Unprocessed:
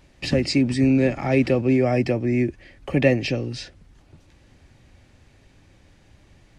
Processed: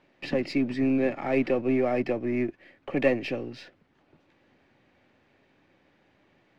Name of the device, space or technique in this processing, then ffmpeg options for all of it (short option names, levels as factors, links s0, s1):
crystal radio: -af "highpass=240,lowpass=2800,aeval=exprs='if(lt(val(0),0),0.708*val(0),val(0))':c=same,volume=0.75"